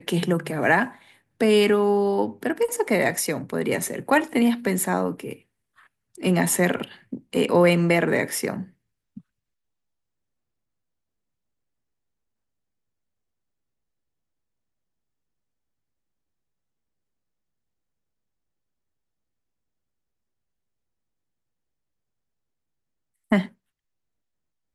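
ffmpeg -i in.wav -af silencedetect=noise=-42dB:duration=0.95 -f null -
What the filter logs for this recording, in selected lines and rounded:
silence_start: 9.19
silence_end: 23.31 | silence_duration: 14.13
silence_start: 23.48
silence_end: 24.74 | silence_duration: 1.26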